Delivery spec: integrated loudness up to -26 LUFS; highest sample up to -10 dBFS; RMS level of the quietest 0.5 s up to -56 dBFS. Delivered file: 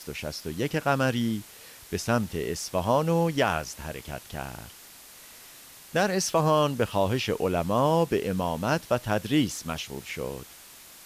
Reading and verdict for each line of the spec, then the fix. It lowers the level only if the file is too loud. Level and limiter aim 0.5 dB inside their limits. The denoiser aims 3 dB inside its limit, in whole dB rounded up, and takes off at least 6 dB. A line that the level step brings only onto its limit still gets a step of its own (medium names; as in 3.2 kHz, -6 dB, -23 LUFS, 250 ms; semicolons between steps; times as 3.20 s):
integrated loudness -27.0 LUFS: pass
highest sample -11.0 dBFS: pass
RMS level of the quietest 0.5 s -49 dBFS: fail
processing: noise reduction 10 dB, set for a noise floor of -49 dBFS